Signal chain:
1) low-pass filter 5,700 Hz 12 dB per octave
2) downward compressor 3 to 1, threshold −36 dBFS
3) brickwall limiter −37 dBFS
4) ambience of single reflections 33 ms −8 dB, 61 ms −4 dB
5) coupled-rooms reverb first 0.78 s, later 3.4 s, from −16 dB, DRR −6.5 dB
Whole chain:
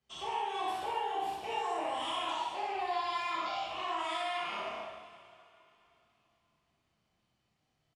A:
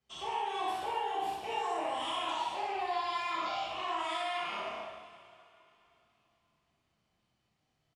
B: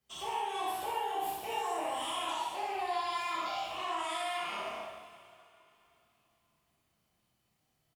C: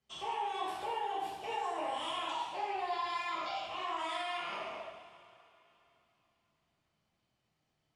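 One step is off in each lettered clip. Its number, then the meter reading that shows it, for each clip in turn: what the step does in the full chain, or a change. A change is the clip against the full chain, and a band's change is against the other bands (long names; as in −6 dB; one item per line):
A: 2, average gain reduction 5.0 dB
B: 1, 8 kHz band +7.0 dB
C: 4, change in crest factor −1.5 dB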